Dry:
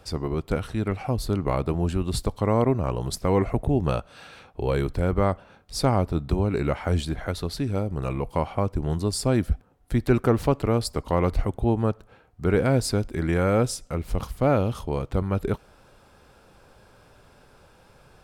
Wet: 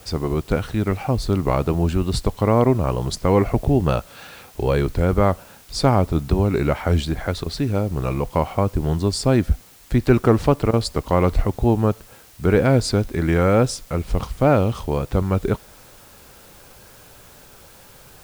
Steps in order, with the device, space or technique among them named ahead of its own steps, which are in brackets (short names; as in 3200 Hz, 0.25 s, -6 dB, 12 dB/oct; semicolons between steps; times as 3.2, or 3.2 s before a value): worn cassette (LPF 7900 Hz; wow and flutter; level dips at 7.44/10.71, 21 ms -15 dB; white noise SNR 29 dB); gain +5 dB